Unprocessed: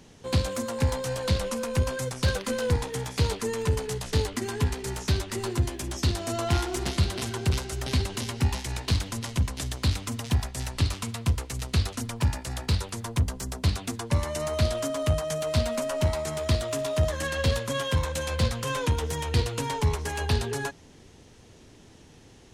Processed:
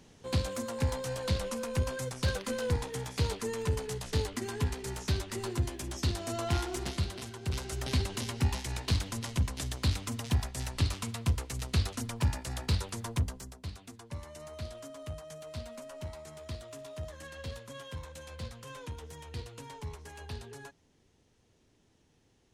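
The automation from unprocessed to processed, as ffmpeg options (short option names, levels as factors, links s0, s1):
-af "volume=1.5,afade=t=out:st=6.71:d=0.69:silence=0.421697,afade=t=in:st=7.4:d=0.3:silence=0.354813,afade=t=out:st=13.11:d=0.45:silence=0.237137"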